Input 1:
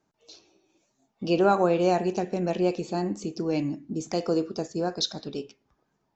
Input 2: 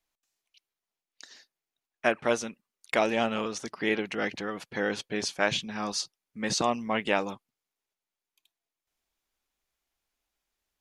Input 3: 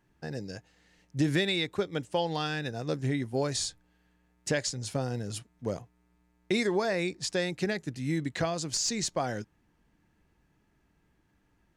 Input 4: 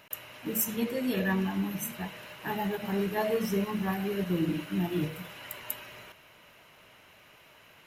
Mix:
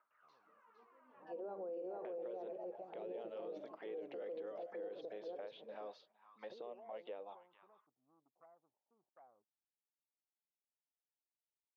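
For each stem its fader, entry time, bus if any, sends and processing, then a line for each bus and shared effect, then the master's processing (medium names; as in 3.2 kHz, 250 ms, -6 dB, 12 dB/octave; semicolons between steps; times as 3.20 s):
0.0 dB, 0.00 s, no send, echo send -9.5 dB, low-pass 3.2 kHz 6 dB/octave; auto duck -10 dB, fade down 1.45 s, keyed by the second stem
-0.5 dB, 0.00 s, no send, echo send -21.5 dB, compression 12:1, threshold -30 dBFS, peak gain reduction 12 dB; touch-sensitive low-pass 270–3600 Hz up, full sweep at -36.5 dBFS
-14.5 dB, 0.00 s, no send, no echo send, steep low-pass 870 Hz 72 dB/octave; saturation -25.5 dBFS, distortion -14 dB
-13.5 dB, 0.00 s, no send, no echo send, low-pass 1.5 kHz 12 dB/octave; phaser 0.32 Hz, delay 4.8 ms, feedback 69%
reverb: none
echo: delay 459 ms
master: bass shelf 190 Hz -12 dB; auto-wah 480–1300 Hz, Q 5.4, down, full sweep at -29.5 dBFS; peak limiter -38.5 dBFS, peak gain reduction 10 dB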